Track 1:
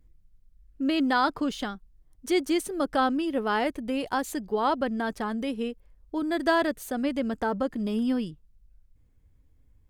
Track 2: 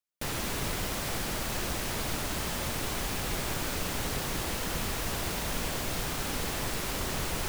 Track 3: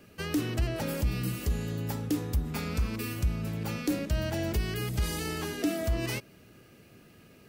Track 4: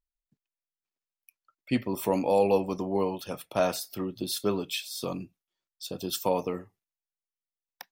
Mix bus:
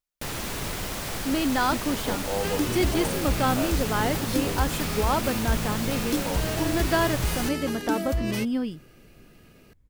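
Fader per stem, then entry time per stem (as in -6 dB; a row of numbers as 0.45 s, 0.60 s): -0.5 dB, +1.0 dB, +1.5 dB, -6.5 dB; 0.45 s, 0.00 s, 2.25 s, 0.00 s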